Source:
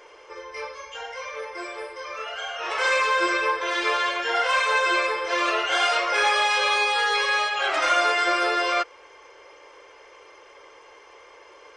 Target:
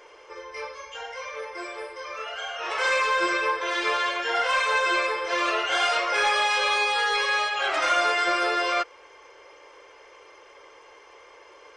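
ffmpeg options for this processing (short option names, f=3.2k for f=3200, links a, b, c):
-af "acontrast=60,volume=-7.5dB"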